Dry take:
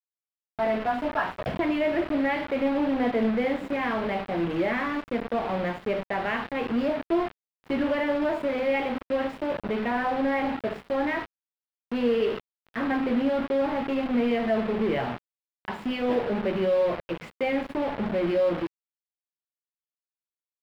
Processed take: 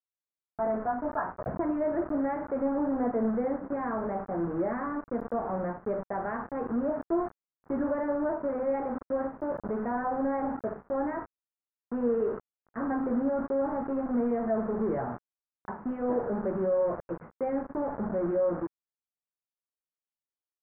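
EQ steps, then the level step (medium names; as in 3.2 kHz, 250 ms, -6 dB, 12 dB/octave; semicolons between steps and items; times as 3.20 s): steep low-pass 1.5 kHz 36 dB/octave; -3.5 dB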